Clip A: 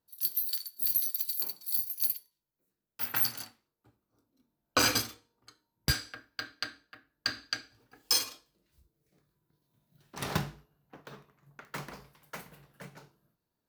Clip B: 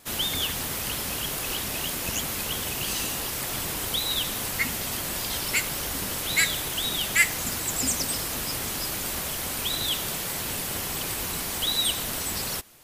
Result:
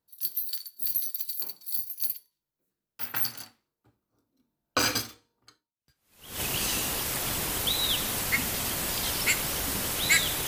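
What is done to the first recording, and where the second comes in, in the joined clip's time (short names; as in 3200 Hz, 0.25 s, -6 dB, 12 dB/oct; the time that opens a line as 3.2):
clip A
5.98 switch to clip B from 2.25 s, crossfade 0.86 s exponential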